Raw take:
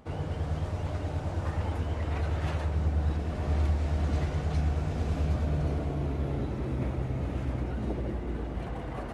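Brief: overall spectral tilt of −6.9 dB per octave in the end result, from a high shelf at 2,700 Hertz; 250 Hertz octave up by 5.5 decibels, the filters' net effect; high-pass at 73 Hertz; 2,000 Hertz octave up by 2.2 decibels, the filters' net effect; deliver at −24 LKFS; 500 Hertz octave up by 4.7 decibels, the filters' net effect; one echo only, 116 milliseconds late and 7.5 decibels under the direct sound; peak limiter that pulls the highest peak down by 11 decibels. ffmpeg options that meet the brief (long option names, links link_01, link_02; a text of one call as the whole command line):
ffmpeg -i in.wav -af "highpass=73,equalizer=frequency=250:width_type=o:gain=6.5,equalizer=frequency=500:width_type=o:gain=4,equalizer=frequency=2000:width_type=o:gain=5.5,highshelf=frequency=2700:gain=-7.5,alimiter=level_in=3dB:limit=-24dB:level=0:latency=1,volume=-3dB,aecho=1:1:116:0.422,volume=11dB" out.wav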